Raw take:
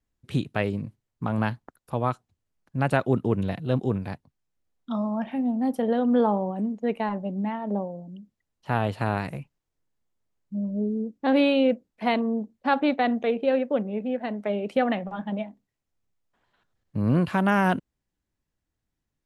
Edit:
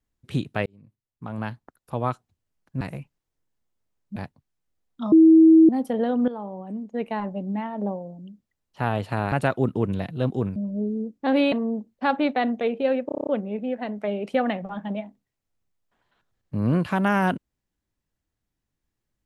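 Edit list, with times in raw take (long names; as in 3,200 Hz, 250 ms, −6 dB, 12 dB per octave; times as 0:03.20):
0:00.66–0:02.06: fade in
0:02.81–0:04.05: swap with 0:09.21–0:10.56
0:05.01–0:05.58: beep over 322 Hz −9 dBFS
0:06.17–0:07.15: fade in, from −15.5 dB
0:11.52–0:12.15: remove
0:13.69: stutter 0.03 s, 8 plays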